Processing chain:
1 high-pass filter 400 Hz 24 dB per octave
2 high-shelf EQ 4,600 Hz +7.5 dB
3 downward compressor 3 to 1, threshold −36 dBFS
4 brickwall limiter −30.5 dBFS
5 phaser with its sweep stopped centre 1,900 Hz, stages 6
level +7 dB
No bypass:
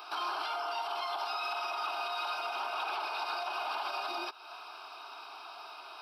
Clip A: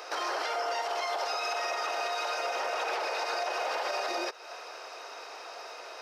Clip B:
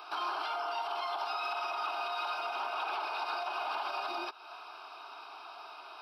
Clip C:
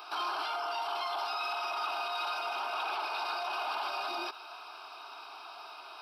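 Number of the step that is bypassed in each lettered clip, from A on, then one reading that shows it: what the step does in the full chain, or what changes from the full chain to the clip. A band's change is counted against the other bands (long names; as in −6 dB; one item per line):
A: 5, 8 kHz band +9.0 dB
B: 2, 4 kHz band −2.5 dB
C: 3, average gain reduction 7.0 dB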